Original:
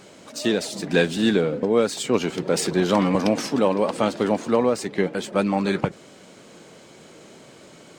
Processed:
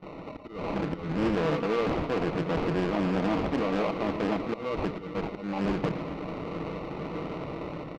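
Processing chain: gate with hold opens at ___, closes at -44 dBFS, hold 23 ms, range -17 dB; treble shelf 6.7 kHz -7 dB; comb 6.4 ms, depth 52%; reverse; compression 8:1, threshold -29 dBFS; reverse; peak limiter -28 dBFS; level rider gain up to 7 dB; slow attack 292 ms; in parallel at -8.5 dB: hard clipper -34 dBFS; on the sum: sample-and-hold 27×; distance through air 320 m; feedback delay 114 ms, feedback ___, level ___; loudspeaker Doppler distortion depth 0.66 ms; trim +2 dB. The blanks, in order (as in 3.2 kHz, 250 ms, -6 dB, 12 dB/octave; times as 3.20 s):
-39 dBFS, 48%, -12.5 dB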